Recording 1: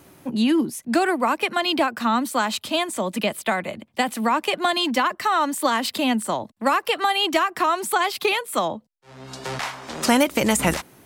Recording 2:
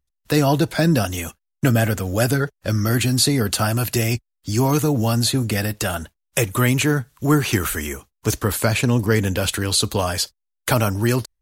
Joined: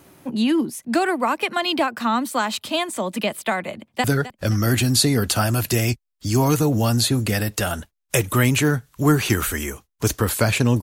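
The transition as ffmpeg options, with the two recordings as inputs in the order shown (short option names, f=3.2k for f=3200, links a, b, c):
-filter_complex "[0:a]apad=whole_dur=10.82,atrim=end=10.82,atrim=end=4.042[a];[1:a]atrim=start=2.268:end=9.05[b];[a][b]acrossfade=d=0.004:c1=hsin:c2=hsin,asplit=2[c][d];[d]afade=t=in:st=3.78:d=0.01,afade=t=out:st=4.04:d=0.01,aecho=0:1:260|520|780|1040:0.177828|0.0800226|0.0360102|0.0162046[e];[c][e]amix=inputs=2:normalize=0"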